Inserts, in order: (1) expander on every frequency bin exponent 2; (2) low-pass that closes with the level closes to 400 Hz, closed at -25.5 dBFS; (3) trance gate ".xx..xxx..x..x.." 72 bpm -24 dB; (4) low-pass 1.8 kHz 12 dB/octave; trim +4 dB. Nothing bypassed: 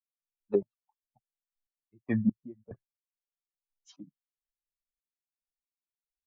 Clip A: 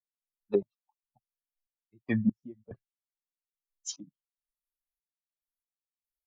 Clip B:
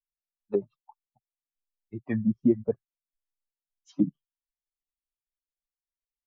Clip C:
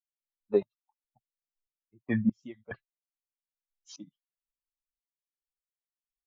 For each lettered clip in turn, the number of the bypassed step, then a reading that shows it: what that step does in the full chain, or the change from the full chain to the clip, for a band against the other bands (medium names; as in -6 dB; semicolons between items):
4, 2 kHz band +3.5 dB; 3, 2 kHz band -3.5 dB; 2, 2 kHz band +5.0 dB